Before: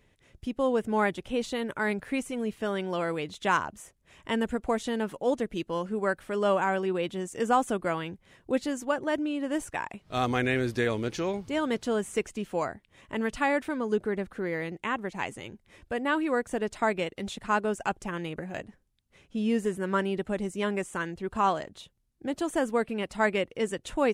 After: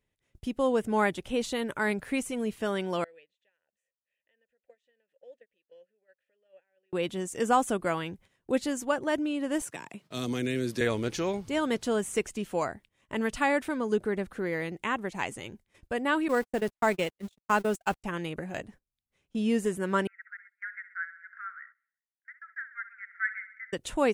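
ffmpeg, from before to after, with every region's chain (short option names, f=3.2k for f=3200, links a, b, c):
-filter_complex "[0:a]asettb=1/sr,asplit=3[a][b][c];[a]atrim=end=3.044[d];[b]atrim=start=3.04:end=6.93,asetpts=PTS-STARTPTS,afade=t=in:d=0.004:c=qsin,afade=t=out:st=3.886:d=0.004:c=qsin,equalizer=f=330:t=o:w=3:g=-10,acompressor=threshold=-42dB:ratio=5:attack=3.2:release=140:knee=1:detection=peak,asplit=3[e][f][g];[e]bandpass=f=530:t=q:w=8,volume=0dB[h];[f]bandpass=f=1.84k:t=q:w=8,volume=-6dB[i];[g]bandpass=f=2.48k:t=q:w=8,volume=-9dB[j];[h][i][j]amix=inputs=3:normalize=0[k];[c]atrim=start=6.926[l];[d][k]acrossfade=d=0.004:c1=hsin:c2=qsin[m];[m][l]acrossfade=d=0.004:c1=qsin:c2=hsin,asettb=1/sr,asplit=3[n][o][p];[n]atrim=end=9.624[q];[o]atrim=start=9.62:end=10.81,asetpts=PTS-STARTPTS,afade=t=in:d=0.004:c=qsin,afade=t=out:st=1.186:d=0.004:c=qsin,highpass=f=130:w=0.5412,highpass=f=130:w=1.3066,bandreject=f=770:w=10,acrossover=split=450|3000[r][s][t];[s]acompressor=threshold=-46dB:ratio=3:attack=3.2:release=140:knee=2.83:detection=peak[u];[r][u][t]amix=inputs=3:normalize=0[v];[p]atrim=start=10.806[w];[q][v]acrossfade=d=0.004:c1=hsin:c2=qsin[x];[x][w]acrossfade=d=0.004:c1=qsin:c2=hsin,asettb=1/sr,asplit=3[y][z][aa];[y]atrim=end=16.284[ab];[z]atrim=start=16.28:end=18.04,asetpts=PTS-STARTPTS,afade=t=in:d=0.004:c=qsin,afade=t=out:st=1.756:d=0.004:c=qsin,aeval=exprs='val(0)+0.5*0.0106*sgn(val(0))':c=same,agate=range=-60dB:threshold=-32dB:ratio=16:release=100:detection=peak[ac];[aa]atrim=start=18.036[ad];[ab][ac]acrossfade=d=0.004:c1=hsin:c2=qsin[ae];[ae][ad]acrossfade=d=0.004:c1=qsin:c2=hsin,asettb=1/sr,asplit=3[af][ag][ah];[af]atrim=end=20.074[ai];[ag]atrim=start=20.07:end=23.73,asetpts=PTS-STARTPTS,afade=t=in:d=0.004:c=qsin,afade=t=out:st=3.656:d=0.004:c=qsin,asuperpass=centerf=1700:order=12:qfactor=2.2,aecho=1:1:64|128|192|256|320|384:0.211|0.127|0.0761|0.0457|0.0274|0.0164,atrim=end_sample=161406[aj];[ah]atrim=start=23.726[ak];[ai][aj]acrossfade=d=0.004:c1=hsin:c2=qsin[al];[al][ak]acrossfade=d=0.004:c1=qsin:c2=hsin,agate=range=-17dB:threshold=-52dB:ratio=16:detection=peak,highshelf=f=6.1k:g=6"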